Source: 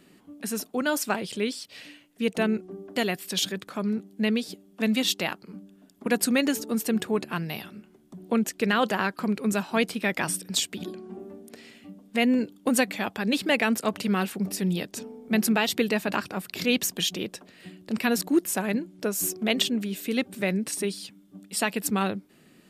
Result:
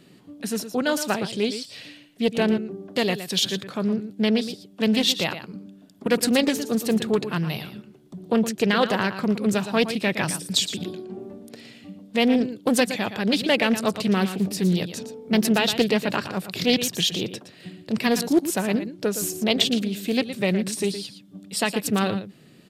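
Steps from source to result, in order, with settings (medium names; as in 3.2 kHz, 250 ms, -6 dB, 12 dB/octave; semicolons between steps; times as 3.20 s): graphic EQ 125/500/4000 Hz +11/+4/+6 dB; on a send: delay 116 ms -11 dB; on the sum: loudspeaker Doppler distortion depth 0.26 ms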